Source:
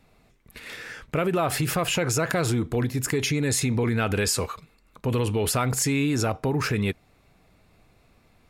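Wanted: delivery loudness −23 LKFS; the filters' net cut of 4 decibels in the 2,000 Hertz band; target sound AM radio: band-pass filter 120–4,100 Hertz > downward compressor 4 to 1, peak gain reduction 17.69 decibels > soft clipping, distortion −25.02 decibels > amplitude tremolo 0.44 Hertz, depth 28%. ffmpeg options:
ffmpeg -i in.wav -af "highpass=120,lowpass=4100,equalizer=frequency=2000:width_type=o:gain=-5,acompressor=threshold=-42dB:ratio=4,asoftclip=threshold=-28.5dB,tremolo=f=0.44:d=0.28,volume=22dB" out.wav

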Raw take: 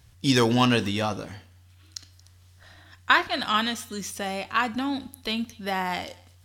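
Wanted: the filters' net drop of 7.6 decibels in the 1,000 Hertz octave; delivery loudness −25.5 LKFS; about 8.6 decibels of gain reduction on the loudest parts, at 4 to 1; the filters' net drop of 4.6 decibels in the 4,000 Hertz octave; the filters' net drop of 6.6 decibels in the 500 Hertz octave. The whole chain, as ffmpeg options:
ffmpeg -i in.wav -af "equalizer=frequency=500:width_type=o:gain=-6.5,equalizer=frequency=1000:width_type=o:gain=-7.5,equalizer=frequency=4000:width_type=o:gain=-5.5,acompressor=threshold=-29dB:ratio=4,volume=9dB" out.wav

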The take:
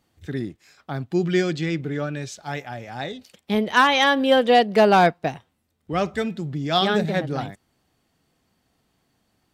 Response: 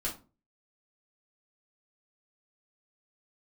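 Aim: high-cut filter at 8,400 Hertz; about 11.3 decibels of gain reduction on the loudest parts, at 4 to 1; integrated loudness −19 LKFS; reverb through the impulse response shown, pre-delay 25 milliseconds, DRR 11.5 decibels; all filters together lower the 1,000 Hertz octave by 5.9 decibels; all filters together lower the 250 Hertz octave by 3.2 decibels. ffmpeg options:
-filter_complex "[0:a]lowpass=8400,equalizer=frequency=250:width_type=o:gain=-4,equalizer=frequency=1000:width_type=o:gain=-8.5,acompressor=threshold=-29dB:ratio=4,asplit=2[link_01][link_02];[1:a]atrim=start_sample=2205,adelay=25[link_03];[link_02][link_03]afir=irnorm=-1:irlink=0,volume=-15dB[link_04];[link_01][link_04]amix=inputs=2:normalize=0,volume=13.5dB"

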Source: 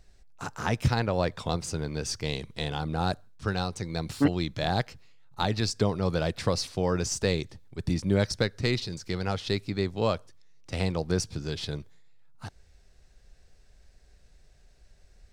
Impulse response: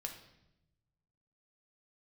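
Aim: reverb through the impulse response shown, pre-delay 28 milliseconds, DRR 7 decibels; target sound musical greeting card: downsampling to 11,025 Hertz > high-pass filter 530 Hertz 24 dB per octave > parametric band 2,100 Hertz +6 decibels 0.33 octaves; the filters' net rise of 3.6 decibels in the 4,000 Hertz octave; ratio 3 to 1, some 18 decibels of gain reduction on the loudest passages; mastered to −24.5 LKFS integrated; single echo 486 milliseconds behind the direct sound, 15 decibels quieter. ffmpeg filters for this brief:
-filter_complex "[0:a]equalizer=frequency=4000:width_type=o:gain=4,acompressor=threshold=-44dB:ratio=3,aecho=1:1:486:0.178,asplit=2[link_01][link_02];[1:a]atrim=start_sample=2205,adelay=28[link_03];[link_02][link_03]afir=irnorm=-1:irlink=0,volume=-5dB[link_04];[link_01][link_04]amix=inputs=2:normalize=0,aresample=11025,aresample=44100,highpass=frequency=530:width=0.5412,highpass=frequency=530:width=1.3066,equalizer=frequency=2100:width_type=o:width=0.33:gain=6,volume=22dB"

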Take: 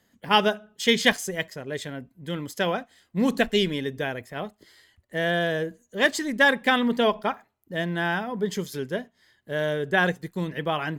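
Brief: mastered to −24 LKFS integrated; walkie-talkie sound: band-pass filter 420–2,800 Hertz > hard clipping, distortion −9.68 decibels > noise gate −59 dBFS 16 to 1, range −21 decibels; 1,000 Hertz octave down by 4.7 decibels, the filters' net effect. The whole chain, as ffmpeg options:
ffmpeg -i in.wav -af "highpass=420,lowpass=2800,equalizer=frequency=1000:width_type=o:gain=-6,asoftclip=type=hard:threshold=-21.5dB,agate=range=-21dB:threshold=-59dB:ratio=16,volume=7.5dB" out.wav

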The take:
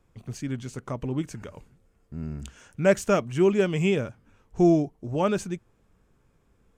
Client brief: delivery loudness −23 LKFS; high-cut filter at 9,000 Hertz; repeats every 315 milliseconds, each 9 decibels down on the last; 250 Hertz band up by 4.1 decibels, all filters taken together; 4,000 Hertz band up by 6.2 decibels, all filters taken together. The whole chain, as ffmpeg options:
ffmpeg -i in.wav -af "lowpass=9000,equalizer=frequency=250:width_type=o:gain=6.5,equalizer=frequency=4000:width_type=o:gain=9,aecho=1:1:315|630|945|1260:0.355|0.124|0.0435|0.0152,volume=-0.5dB" out.wav

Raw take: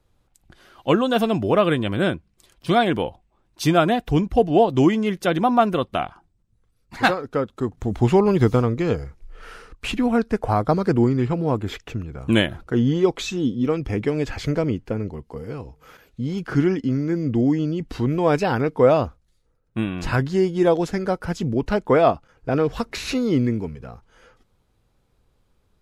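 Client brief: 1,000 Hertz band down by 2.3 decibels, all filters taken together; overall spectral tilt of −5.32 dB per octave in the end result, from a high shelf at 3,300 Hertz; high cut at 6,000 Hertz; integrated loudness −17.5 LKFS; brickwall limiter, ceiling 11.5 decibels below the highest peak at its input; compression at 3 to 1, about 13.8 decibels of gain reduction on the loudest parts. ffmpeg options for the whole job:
ffmpeg -i in.wav -af "lowpass=6000,equalizer=frequency=1000:width_type=o:gain=-4.5,highshelf=frequency=3300:gain=8.5,acompressor=threshold=-31dB:ratio=3,volume=19.5dB,alimiter=limit=-8dB:level=0:latency=1" out.wav

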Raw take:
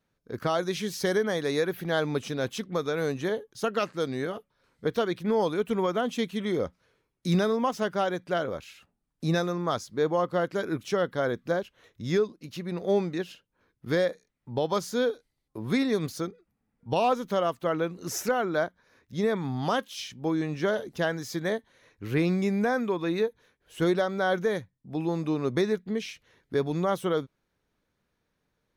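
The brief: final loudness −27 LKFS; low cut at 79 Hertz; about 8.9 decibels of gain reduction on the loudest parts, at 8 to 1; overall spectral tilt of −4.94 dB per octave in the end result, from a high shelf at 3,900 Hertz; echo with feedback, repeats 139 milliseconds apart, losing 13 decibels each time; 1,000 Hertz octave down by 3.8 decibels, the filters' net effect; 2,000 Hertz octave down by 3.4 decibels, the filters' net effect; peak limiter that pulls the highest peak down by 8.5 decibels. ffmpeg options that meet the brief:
ffmpeg -i in.wav -af "highpass=79,equalizer=frequency=1000:width_type=o:gain=-5,equalizer=frequency=2000:width_type=o:gain=-3.5,highshelf=frequency=3900:gain=5,acompressor=threshold=-30dB:ratio=8,alimiter=level_in=3dB:limit=-24dB:level=0:latency=1,volume=-3dB,aecho=1:1:139|278|417:0.224|0.0493|0.0108,volume=10dB" out.wav

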